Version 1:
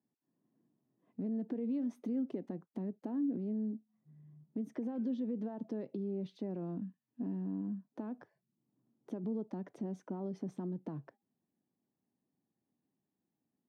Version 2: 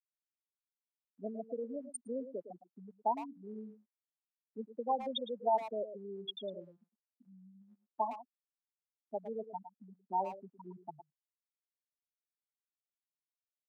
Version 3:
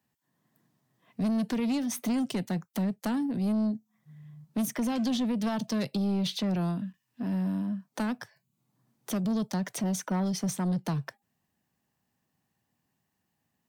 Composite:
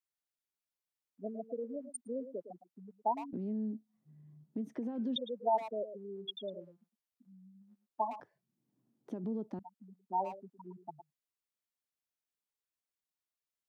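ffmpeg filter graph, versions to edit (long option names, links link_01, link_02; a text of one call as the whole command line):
ffmpeg -i take0.wav -i take1.wav -filter_complex "[0:a]asplit=2[link_01][link_02];[1:a]asplit=3[link_03][link_04][link_05];[link_03]atrim=end=3.332[link_06];[link_01]atrim=start=3.328:end=5.162[link_07];[link_04]atrim=start=5.158:end=8.202[link_08];[link_02]atrim=start=8.198:end=9.592[link_09];[link_05]atrim=start=9.588[link_10];[link_06][link_07]acrossfade=duration=0.004:curve1=hsin:curve2=hsin[link_11];[link_11][link_08]acrossfade=duration=0.004:curve1=hsin:curve2=hsin[link_12];[link_12][link_09]acrossfade=duration=0.004:curve1=hsin:curve2=hsin[link_13];[link_13][link_10]acrossfade=duration=0.004:curve1=hsin:curve2=hsin" out.wav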